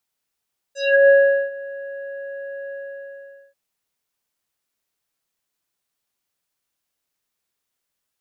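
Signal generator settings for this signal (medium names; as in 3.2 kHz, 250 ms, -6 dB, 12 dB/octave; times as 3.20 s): synth note square C#5 24 dB/octave, low-pass 1.4 kHz, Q 3.8, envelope 2.5 oct, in 0.22 s, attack 332 ms, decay 0.42 s, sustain -21 dB, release 0.82 s, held 1.97 s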